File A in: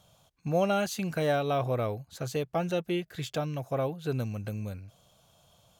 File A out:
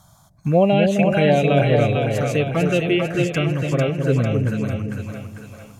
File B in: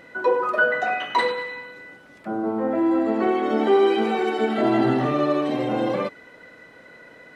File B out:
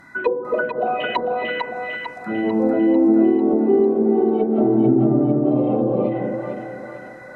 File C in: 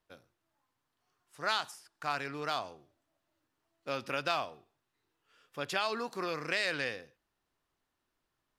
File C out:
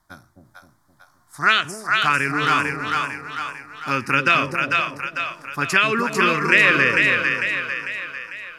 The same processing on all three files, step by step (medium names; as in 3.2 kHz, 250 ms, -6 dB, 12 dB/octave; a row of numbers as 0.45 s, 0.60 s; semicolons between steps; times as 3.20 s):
touch-sensitive phaser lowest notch 470 Hz, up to 3 kHz, full sweep at -17 dBFS; dynamic bell 2.6 kHz, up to +5 dB, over -51 dBFS, Q 3.1; low-pass that closes with the level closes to 350 Hz, closed at -18.5 dBFS; on a send: two-band feedback delay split 590 Hz, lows 260 ms, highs 448 ms, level -3 dB; on the sum: endings held to a fixed fall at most 360 dB/s; normalise loudness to -19 LUFS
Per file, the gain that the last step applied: +12.5 dB, +5.0 dB, +18.0 dB